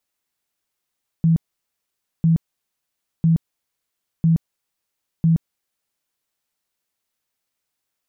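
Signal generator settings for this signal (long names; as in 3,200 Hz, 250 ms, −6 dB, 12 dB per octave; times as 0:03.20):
tone bursts 164 Hz, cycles 20, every 1.00 s, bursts 5, −12 dBFS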